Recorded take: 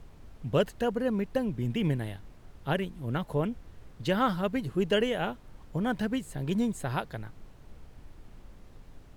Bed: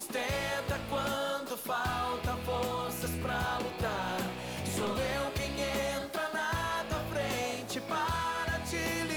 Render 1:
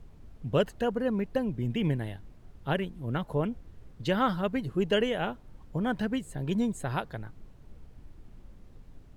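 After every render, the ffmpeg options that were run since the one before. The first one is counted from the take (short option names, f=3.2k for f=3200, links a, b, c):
-af "afftdn=nr=6:nf=-53"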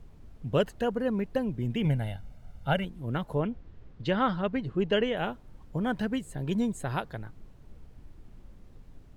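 -filter_complex "[0:a]asettb=1/sr,asplit=3[a][b][c];[a]atrim=end=1.854[d];[b]atrim=start=1.85:end=2.85,asetpts=PTS-STARTPTS,afade=t=in:d=0.004:c=qsin,afade=t=out:st=0.996:d=0.004:c=qsin,aecho=1:1:1.4:0.71,atrim=end_sample=44100[e];[c]atrim=start=2.846[f];[d][e]acrossfade=d=0.004:c1=hsin:c2=qsin[g];[g][f]acrossfade=d=0.004:c1=qsin:c2=hsin,asettb=1/sr,asplit=3[h][i][j];[h]atrim=end=3.404[k];[i]atrim=start=3.4:end=5.17,asetpts=PTS-STARTPTS,afade=t=in:d=0.004:c=qsin,afade=t=out:st=1.766:d=0.004:c=qsin,lowpass=4.4k[l];[j]atrim=start=5.166[m];[k][l]acrossfade=d=0.004:c1=hsin:c2=qsin[n];[n][m]acrossfade=d=0.004:c1=qsin:c2=hsin"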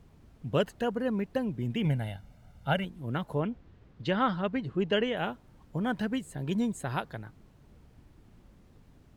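-af "highpass=f=90:p=1,equalizer=f=490:w=1.5:g=-2"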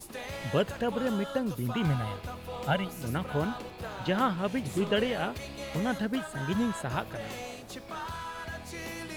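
-filter_complex "[1:a]volume=-6dB[a];[0:a][a]amix=inputs=2:normalize=0"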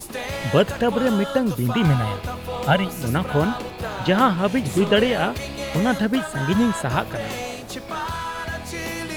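-af "volume=10dB"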